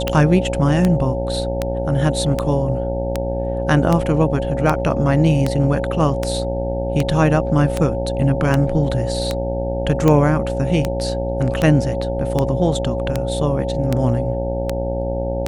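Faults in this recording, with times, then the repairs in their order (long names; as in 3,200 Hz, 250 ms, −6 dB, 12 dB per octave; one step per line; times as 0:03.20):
mains buzz 60 Hz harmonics 15 −24 dBFS
scratch tick 78 rpm −5 dBFS
whistle 550 Hz −23 dBFS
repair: click removal
hum removal 60 Hz, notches 15
notch filter 550 Hz, Q 30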